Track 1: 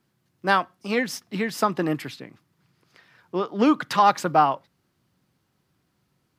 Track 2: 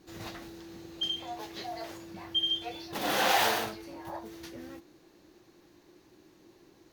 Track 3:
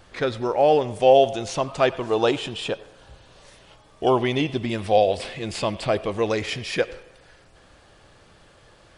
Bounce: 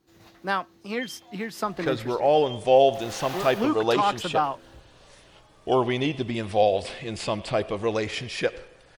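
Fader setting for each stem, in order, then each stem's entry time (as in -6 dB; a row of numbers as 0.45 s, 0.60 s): -6.0 dB, -11.0 dB, -2.5 dB; 0.00 s, 0.00 s, 1.65 s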